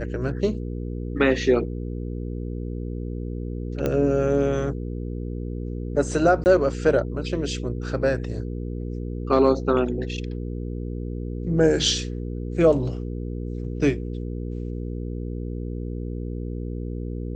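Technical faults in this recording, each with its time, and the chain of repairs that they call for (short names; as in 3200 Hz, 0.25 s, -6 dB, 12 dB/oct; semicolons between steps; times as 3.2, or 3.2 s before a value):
hum 60 Hz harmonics 8 -30 dBFS
3.86 pop -12 dBFS
6.44–6.46 gap 19 ms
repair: de-click; de-hum 60 Hz, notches 8; interpolate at 6.44, 19 ms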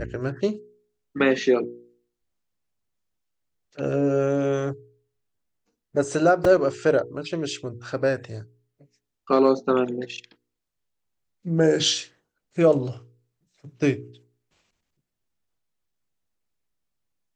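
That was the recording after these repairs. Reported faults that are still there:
none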